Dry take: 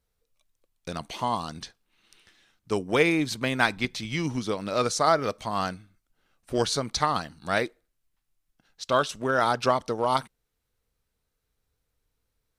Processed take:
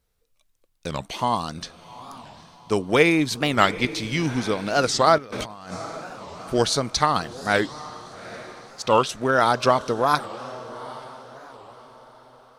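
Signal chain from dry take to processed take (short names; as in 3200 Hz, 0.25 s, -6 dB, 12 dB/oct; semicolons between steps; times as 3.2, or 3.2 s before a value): diffused feedback echo 0.8 s, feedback 42%, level -15.5 dB; 5.18–5.73 negative-ratio compressor -41 dBFS, ratio -1; record warp 45 rpm, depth 250 cents; gain +4.5 dB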